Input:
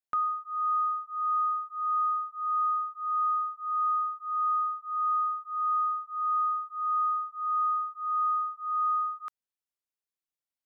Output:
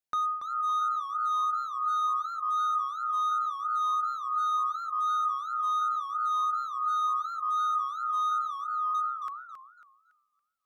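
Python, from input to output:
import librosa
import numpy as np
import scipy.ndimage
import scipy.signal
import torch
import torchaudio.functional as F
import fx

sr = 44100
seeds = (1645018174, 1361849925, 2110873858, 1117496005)

y = fx.lowpass(x, sr, hz=1300.0, slope=12, at=(8.41, 8.93), fade=0.02)
y = np.clip(y, -10.0 ** (-25.5 / 20.0), 10.0 ** (-25.5 / 20.0))
y = fx.echo_warbled(y, sr, ms=277, feedback_pct=30, rate_hz=2.8, cents=182, wet_db=-9.0)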